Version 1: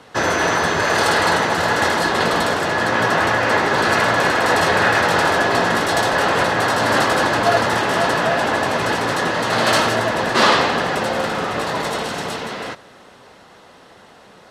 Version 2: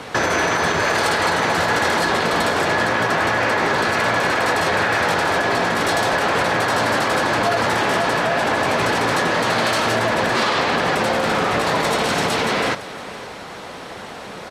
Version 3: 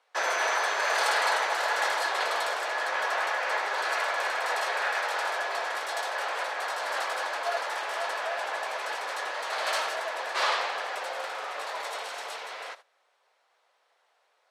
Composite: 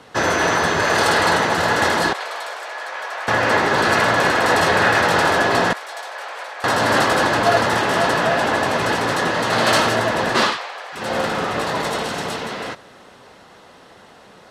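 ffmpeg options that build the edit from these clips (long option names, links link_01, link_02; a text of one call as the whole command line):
ffmpeg -i take0.wav -i take1.wav -i take2.wav -filter_complex "[2:a]asplit=3[link_01][link_02][link_03];[0:a]asplit=4[link_04][link_05][link_06][link_07];[link_04]atrim=end=2.132[link_08];[link_01]atrim=start=2.128:end=3.282[link_09];[link_05]atrim=start=3.278:end=5.732[link_10];[link_02]atrim=start=5.728:end=6.642[link_11];[link_06]atrim=start=6.638:end=10.59[link_12];[link_03]atrim=start=10.35:end=11.15[link_13];[link_07]atrim=start=10.91[link_14];[link_08][link_09]acrossfade=duration=0.004:curve1=hsin:curve2=hsin[link_15];[link_15][link_10]acrossfade=duration=0.004:curve1=hsin:curve2=hsin[link_16];[link_16][link_11]acrossfade=duration=0.004:curve1=hsin:curve2=hsin[link_17];[link_17][link_12]acrossfade=duration=0.004:curve1=hsin:curve2=hsin[link_18];[link_18][link_13]acrossfade=duration=0.24:curve1=tri:curve2=tri[link_19];[link_19][link_14]acrossfade=duration=0.24:curve1=tri:curve2=tri" out.wav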